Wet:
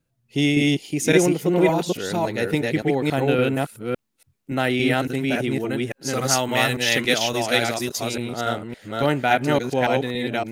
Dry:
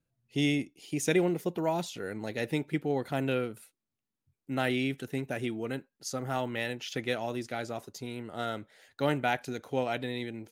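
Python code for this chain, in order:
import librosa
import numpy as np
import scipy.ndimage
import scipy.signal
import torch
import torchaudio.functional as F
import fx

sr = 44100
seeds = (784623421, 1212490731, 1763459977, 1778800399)

y = fx.reverse_delay(x, sr, ms=282, wet_db=0.0)
y = fx.high_shelf(y, sr, hz=2300.0, db=11.0, at=(6.13, 8.16))
y = y * librosa.db_to_amplitude(7.5)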